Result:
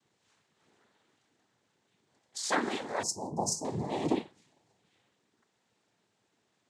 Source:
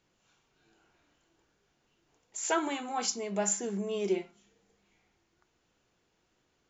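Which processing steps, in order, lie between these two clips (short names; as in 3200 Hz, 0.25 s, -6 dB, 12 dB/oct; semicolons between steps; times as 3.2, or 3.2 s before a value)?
noise vocoder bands 6; 3.03–3.65 elliptic band-stop 950–5400 Hz, stop band 40 dB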